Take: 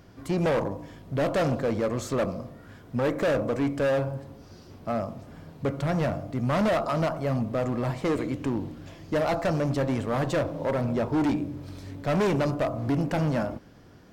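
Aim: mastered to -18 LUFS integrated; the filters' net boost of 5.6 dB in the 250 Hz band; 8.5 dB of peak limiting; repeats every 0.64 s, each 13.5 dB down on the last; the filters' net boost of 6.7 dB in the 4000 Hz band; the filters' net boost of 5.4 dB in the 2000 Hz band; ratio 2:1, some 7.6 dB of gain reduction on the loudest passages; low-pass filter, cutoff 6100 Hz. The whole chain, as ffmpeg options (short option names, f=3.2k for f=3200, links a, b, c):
-af "lowpass=6.1k,equalizer=f=250:t=o:g=7,equalizer=f=2k:t=o:g=5,equalizer=f=4k:t=o:g=7.5,acompressor=threshold=-31dB:ratio=2,alimiter=level_in=1.5dB:limit=-24dB:level=0:latency=1,volume=-1.5dB,aecho=1:1:640|1280:0.211|0.0444,volume=15.5dB"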